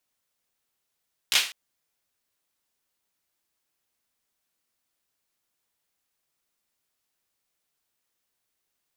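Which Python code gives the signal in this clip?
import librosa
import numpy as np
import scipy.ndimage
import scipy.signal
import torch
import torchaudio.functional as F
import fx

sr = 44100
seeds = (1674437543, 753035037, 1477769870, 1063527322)

y = fx.drum_clap(sr, seeds[0], length_s=0.2, bursts=3, spacing_ms=16, hz=3000.0, decay_s=0.38)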